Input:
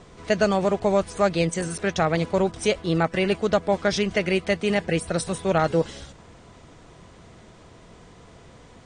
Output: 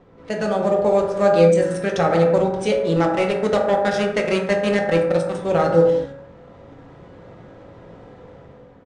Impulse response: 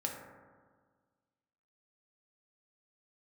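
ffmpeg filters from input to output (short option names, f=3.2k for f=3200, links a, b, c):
-filter_complex "[0:a]equalizer=f=390:w=0.84:g=5,bandreject=f=50:t=h:w=6,bandreject=f=100:t=h:w=6,bandreject=f=150:t=h:w=6,bandreject=f=200:t=h:w=6,bandreject=f=250:t=h:w=6,bandreject=f=300:t=h:w=6,bandreject=f=350:t=h:w=6,bandreject=f=400:t=h:w=6,dynaudnorm=f=240:g=5:m=7dB,asettb=1/sr,asplit=3[a][b][c];[a]atrim=end=2.964[d];[b]atrim=start=2.96:end=5.35,asetpts=PTS-STARTPTS,afade=t=in:d=0.004:c=qsin,afade=t=out:st=2.386:d=0.004:c=qsin,aeval=exprs='0.794*(cos(1*acos(clip(val(0)/0.794,-1,1)))-cos(1*PI/2))+0.0708*(cos(7*acos(clip(val(0)/0.794,-1,1)))-cos(7*PI/2))':c=same[e];[c]atrim=start=5.346[f];[d][e]acrossfade=d=0.004:c1=hsin:c2=qsin[g];[g][f]acrossfade=d=0.004:c1=qsin:c2=hsin,adynamicsmooth=sensitivity=8:basefreq=2.3k,aresample=22050,aresample=44100[h];[1:a]atrim=start_sample=2205,afade=t=out:st=0.29:d=0.01,atrim=end_sample=13230[i];[h][i]afir=irnorm=-1:irlink=0,volume=-5dB"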